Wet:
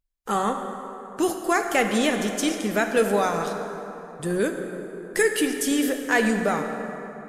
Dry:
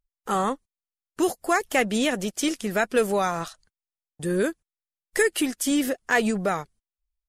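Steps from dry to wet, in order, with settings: plate-style reverb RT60 3.6 s, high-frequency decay 0.5×, DRR 4.5 dB

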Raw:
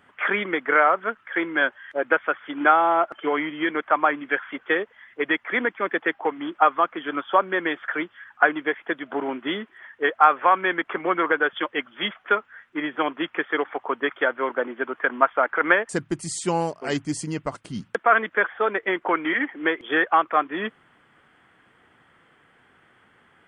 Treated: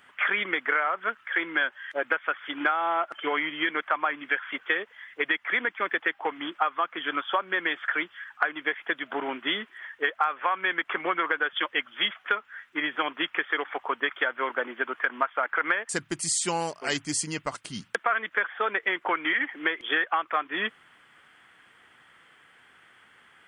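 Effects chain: tilt shelf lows -7 dB, about 1100 Hz; compressor 6:1, threshold -22 dBFS, peak gain reduction 12.5 dB

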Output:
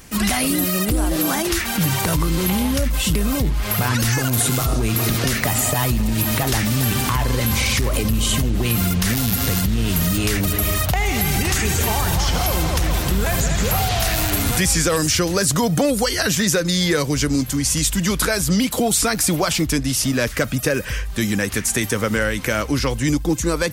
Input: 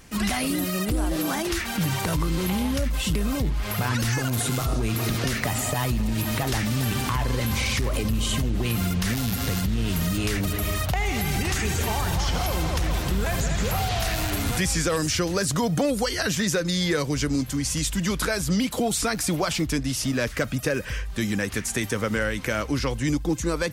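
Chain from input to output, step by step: high shelf 8800 Hz +8 dB; gain +5 dB

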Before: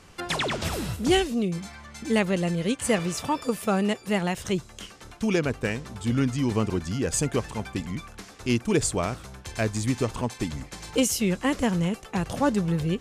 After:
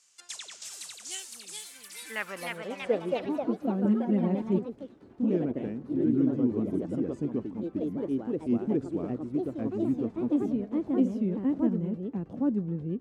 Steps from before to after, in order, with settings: band-pass sweep 7100 Hz -> 260 Hz, 1.29–3.28; echoes that change speed 0.542 s, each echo +2 st, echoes 3; 3.84–4.59 comb 5.4 ms, depth 97%

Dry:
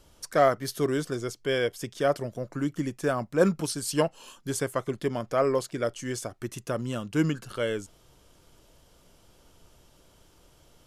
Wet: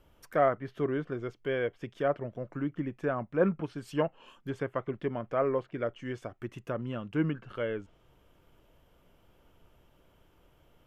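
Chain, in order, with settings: band shelf 6400 Hz -14 dB; treble ducked by the level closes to 2500 Hz, closed at -25.5 dBFS; gain -4 dB

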